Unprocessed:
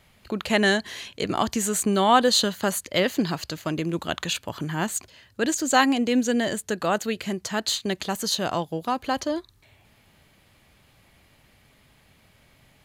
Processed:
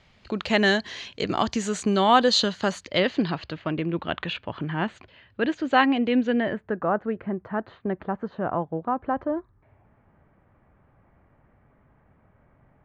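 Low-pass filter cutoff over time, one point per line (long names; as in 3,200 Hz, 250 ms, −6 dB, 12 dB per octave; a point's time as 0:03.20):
low-pass filter 24 dB per octave
0:02.63 5,900 Hz
0:03.63 3,100 Hz
0:06.27 3,100 Hz
0:06.80 1,500 Hz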